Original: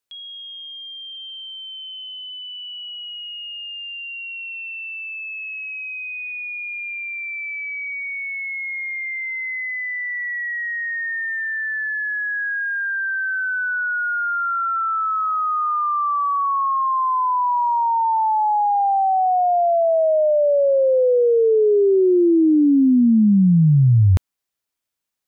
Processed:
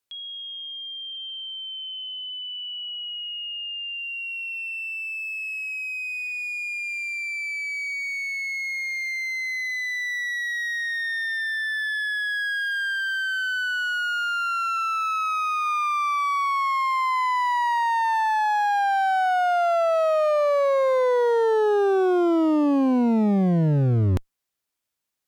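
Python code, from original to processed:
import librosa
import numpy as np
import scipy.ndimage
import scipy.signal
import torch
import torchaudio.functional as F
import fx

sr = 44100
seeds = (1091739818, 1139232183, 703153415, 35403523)

y = fx.clip_asym(x, sr, top_db=-29.5, bottom_db=-13.5)
y = fx.peak_eq(y, sr, hz=690.0, db=-6.0, octaves=0.68, at=(12.93, 15.66))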